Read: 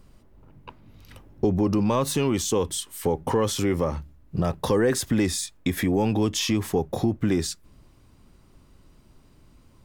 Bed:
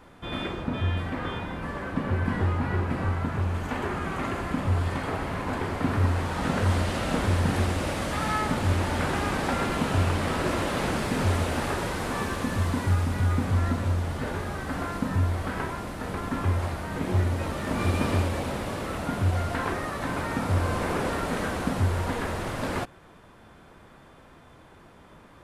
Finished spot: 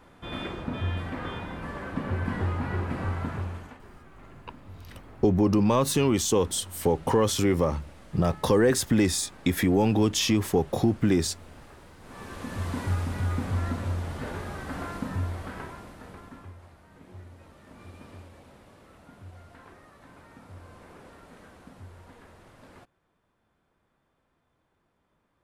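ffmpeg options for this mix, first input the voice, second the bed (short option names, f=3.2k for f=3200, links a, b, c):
-filter_complex "[0:a]adelay=3800,volume=0.5dB[a];[1:a]volume=15.5dB,afade=t=out:st=3.28:d=0.51:silence=0.105925,afade=t=in:st=12.01:d=0.79:silence=0.11885,afade=t=out:st=14.91:d=1.63:silence=0.125893[b];[a][b]amix=inputs=2:normalize=0"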